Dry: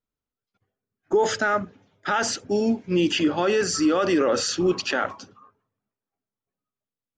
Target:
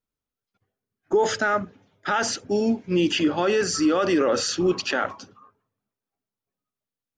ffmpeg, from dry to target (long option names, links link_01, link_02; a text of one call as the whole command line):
ffmpeg -i in.wav -af "bandreject=frequency=7700:width=12" out.wav